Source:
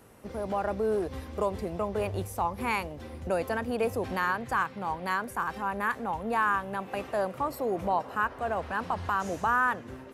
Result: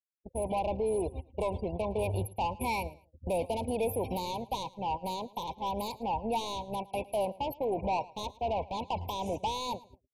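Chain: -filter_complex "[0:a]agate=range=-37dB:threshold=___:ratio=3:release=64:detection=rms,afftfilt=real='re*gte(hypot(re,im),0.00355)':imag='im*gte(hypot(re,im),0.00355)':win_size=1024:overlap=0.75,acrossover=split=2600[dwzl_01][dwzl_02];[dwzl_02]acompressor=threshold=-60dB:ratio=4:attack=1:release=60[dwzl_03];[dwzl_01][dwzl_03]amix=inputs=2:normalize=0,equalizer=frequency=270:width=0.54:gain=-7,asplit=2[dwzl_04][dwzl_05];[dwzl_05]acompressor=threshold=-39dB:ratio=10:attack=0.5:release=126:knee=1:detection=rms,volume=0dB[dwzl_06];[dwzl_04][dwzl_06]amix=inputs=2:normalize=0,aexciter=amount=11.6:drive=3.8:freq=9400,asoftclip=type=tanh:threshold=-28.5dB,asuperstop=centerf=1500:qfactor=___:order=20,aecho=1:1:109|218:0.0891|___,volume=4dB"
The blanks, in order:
-33dB, 1.2, 0.0241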